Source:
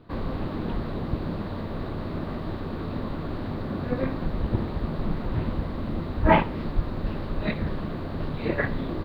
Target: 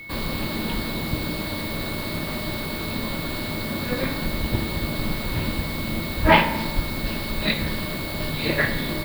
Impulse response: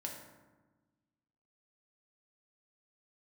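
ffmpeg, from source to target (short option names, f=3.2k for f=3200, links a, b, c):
-filter_complex "[0:a]highshelf=f=3.3k:g=9.5,aeval=exprs='val(0)+0.00708*sin(2*PI*2200*n/s)':c=same,crystalizer=i=4:c=0,asplit=2[a][b];[1:a]atrim=start_sample=2205,highshelf=f=3.8k:g=12[c];[b][c]afir=irnorm=-1:irlink=0,volume=-1dB[d];[a][d]amix=inputs=2:normalize=0,volume=-3.5dB"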